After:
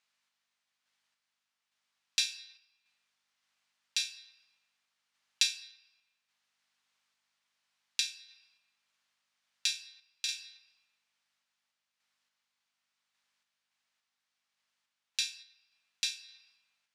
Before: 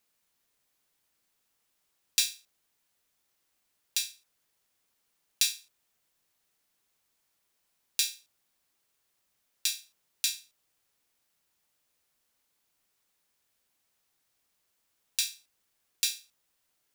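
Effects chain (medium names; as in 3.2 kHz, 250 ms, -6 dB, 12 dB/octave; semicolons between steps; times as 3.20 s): hum 50 Hz, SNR 31 dB; low-pass 5.1 kHz 12 dB/octave; on a send at -11.5 dB: reverberation RT60 1.7 s, pre-delay 3 ms; on the sum: random-step tremolo; high-pass 990 Hz 12 dB/octave; trim +3 dB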